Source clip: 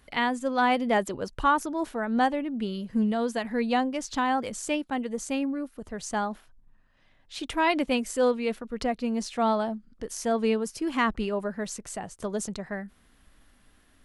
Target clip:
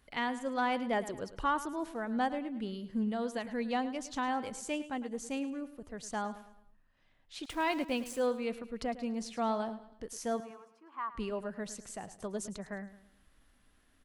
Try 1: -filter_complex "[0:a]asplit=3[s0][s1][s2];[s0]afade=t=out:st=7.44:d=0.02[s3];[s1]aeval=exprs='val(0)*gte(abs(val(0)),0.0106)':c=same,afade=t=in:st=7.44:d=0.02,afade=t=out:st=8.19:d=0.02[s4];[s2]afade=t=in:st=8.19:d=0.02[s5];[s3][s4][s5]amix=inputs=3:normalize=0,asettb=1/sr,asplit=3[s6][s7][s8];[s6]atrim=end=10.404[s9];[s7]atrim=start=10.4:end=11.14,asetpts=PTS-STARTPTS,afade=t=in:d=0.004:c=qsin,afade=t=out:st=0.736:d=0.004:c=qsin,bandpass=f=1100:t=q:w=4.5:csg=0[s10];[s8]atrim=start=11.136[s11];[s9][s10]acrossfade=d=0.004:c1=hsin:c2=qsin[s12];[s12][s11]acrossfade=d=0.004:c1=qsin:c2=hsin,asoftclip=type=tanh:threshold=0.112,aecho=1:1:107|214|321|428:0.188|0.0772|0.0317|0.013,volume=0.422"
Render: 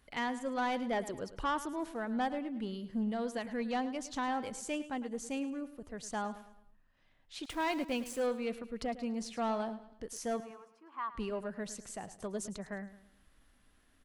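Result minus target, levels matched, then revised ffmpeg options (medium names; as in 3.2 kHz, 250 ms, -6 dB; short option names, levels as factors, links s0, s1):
saturation: distortion +13 dB
-filter_complex "[0:a]asplit=3[s0][s1][s2];[s0]afade=t=out:st=7.44:d=0.02[s3];[s1]aeval=exprs='val(0)*gte(abs(val(0)),0.0106)':c=same,afade=t=in:st=7.44:d=0.02,afade=t=out:st=8.19:d=0.02[s4];[s2]afade=t=in:st=8.19:d=0.02[s5];[s3][s4][s5]amix=inputs=3:normalize=0,asettb=1/sr,asplit=3[s6][s7][s8];[s6]atrim=end=10.404[s9];[s7]atrim=start=10.4:end=11.14,asetpts=PTS-STARTPTS,afade=t=in:d=0.004:c=qsin,afade=t=out:st=0.736:d=0.004:c=qsin,bandpass=f=1100:t=q:w=4.5:csg=0[s10];[s8]atrim=start=11.136[s11];[s9][s10]acrossfade=d=0.004:c1=hsin:c2=qsin[s12];[s12][s11]acrossfade=d=0.004:c1=qsin:c2=hsin,asoftclip=type=tanh:threshold=0.299,aecho=1:1:107|214|321|428:0.188|0.0772|0.0317|0.013,volume=0.422"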